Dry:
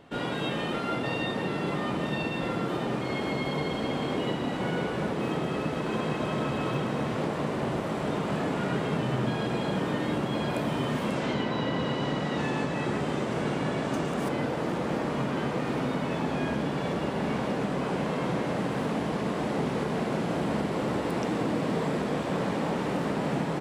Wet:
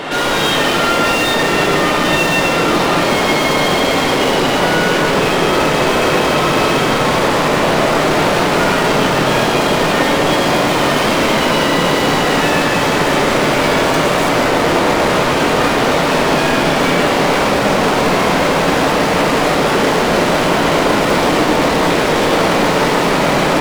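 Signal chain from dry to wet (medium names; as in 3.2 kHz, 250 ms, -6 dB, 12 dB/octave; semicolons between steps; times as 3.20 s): high-pass 78 Hz 24 dB/octave; overdrive pedal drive 37 dB, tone 7.3 kHz, clips at -16.5 dBFS; simulated room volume 120 m³, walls hard, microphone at 0.47 m; trim +4.5 dB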